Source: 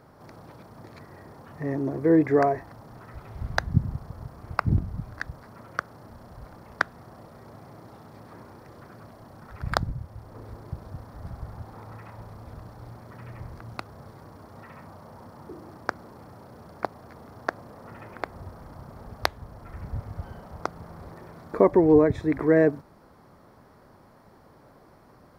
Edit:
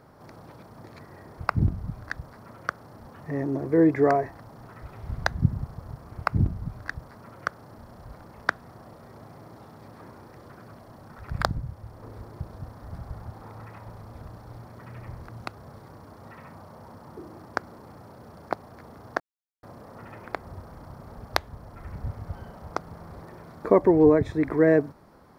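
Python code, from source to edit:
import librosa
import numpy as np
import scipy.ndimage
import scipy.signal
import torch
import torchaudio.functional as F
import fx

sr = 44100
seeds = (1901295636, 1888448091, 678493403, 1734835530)

y = fx.edit(x, sr, fx.duplicate(start_s=4.48, length_s=1.68, to_s=1.38),
    fx.insert_silence(at_s=17.52, length_s=0.43), tone=tone)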